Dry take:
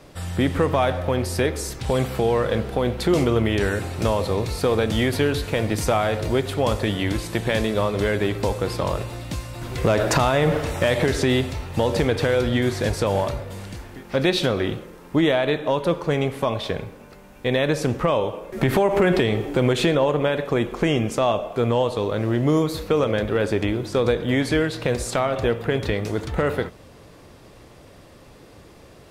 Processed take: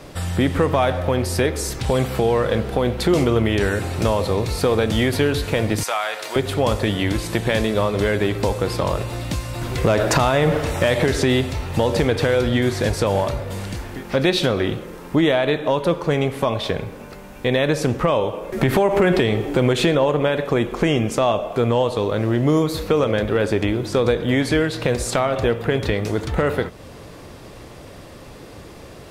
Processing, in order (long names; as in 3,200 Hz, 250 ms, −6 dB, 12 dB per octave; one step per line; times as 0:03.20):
0:05.83–0:06.36: high-pass filter 1,000 Hz 12 dB per octave
in parallel at +2.5 dB: downward compressor, threshold −32 dBFS, peak gain reduction 16.5 dB